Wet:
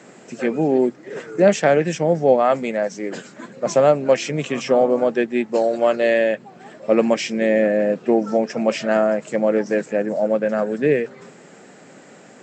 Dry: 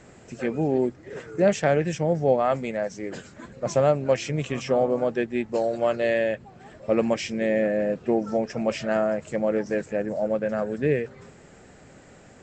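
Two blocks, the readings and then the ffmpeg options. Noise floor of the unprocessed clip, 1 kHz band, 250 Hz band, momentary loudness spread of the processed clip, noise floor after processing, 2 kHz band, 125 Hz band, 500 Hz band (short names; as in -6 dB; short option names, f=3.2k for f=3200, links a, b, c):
-50 dBFS, +6.0 dB, +5.5 dB, 10 LU, -46 dBFS, +6.0 dB, +0.5 dB, +6.0 dB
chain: -af "highpass=f=170:w=0.5412,highpass=f=170:w=1.3066,volume=6dB"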